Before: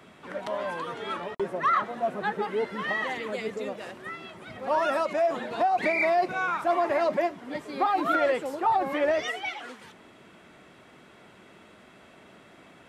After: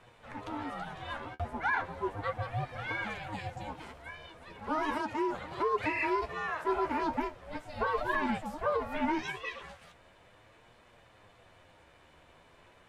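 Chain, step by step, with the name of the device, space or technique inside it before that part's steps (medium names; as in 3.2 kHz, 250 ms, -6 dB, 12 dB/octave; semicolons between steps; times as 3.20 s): alien voice (ring modulator 310 Hz; flange 0.37 Hz, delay 8 ms, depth 5.4 ms, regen +41%); 4.94–7.03 s: high-pass 48 Hz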